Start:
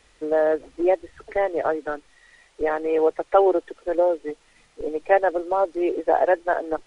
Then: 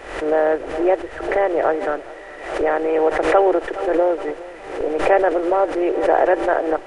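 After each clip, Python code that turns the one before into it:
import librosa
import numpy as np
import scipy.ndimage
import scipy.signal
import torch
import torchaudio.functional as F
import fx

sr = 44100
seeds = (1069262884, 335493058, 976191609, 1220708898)

y = fx.bin_compress(x, sr, power=0.6)
y = fx.echo_feedback(y, sr, ms=417, feedback_pct=56, wet_db=-19.5)
y = fx.pre_swell(y, sr, db_per_s=75.0)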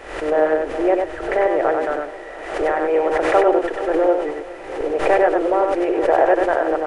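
y = fx.echo_multitap(x, sr, ms=(96, 705), db=(-4.0, -19.0))
y = F.gain(torch.from_numpy(y), -1.0).numpy()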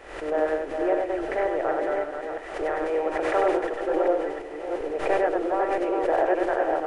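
y = fx.reverse_delay(x, sr, ms=340, wet_db=-4)
y = F.gain(torch.from_numpy(y), -8.0).numpy()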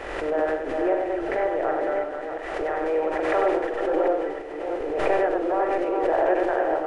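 y = fx.high_shelf(x, sr, hz=6300.0, db=-8.0)
y = fx.doubler(y, sr, ms=44.0, db=-10.5)
y = fx.pre_swell(y, sr, db_per_s=39.0)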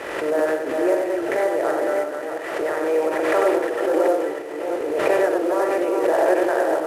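y = fx.cvsd(x, sr, bps=64000)
y = scipy.signal.sosfilt(scipy.signal.butter(2, 140.0, 'highpass', fs=sr, output='sos'), y)
y = fx.notch(y, sr, hz=760.0, q=12.0)
y = F.gain(torch.from_numpy(y), 4.0).numpy()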